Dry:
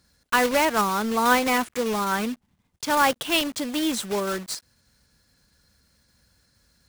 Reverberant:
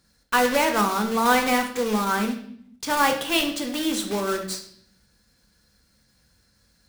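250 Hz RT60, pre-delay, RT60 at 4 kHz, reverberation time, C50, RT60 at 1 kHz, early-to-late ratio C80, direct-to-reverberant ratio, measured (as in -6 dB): 1.1 s, 3 ms, 0.60 s, 0.60 s, 9.0 dB, 0.55 s, 12.0 dB, 3.5 dB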